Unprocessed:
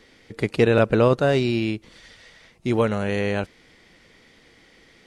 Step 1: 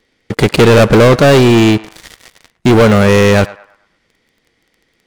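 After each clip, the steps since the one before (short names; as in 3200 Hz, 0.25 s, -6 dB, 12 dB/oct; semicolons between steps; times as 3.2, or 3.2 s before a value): sample leveller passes 5; narrowing echo 0.108 s, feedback 41%, band-pass 1200 Hz, level -15.5 dB; gain +2.5 dB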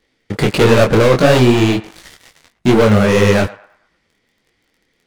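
detuned doubles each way 53 cents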